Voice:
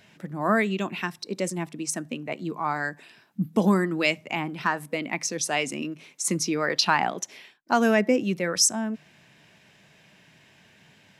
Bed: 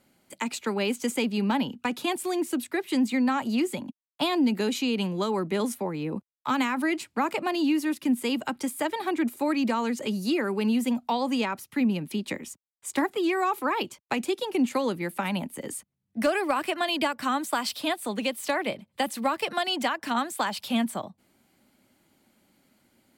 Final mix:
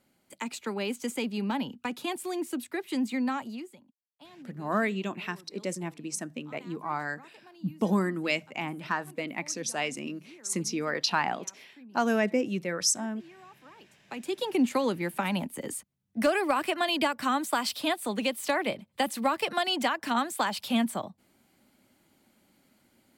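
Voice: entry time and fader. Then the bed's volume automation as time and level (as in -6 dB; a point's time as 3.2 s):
4.25 s, -5.0 dB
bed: 3.35 s -5 dB
3.9 s -26.5 dB
13.77 s -26.5 dB
14.41 s -0.5 dB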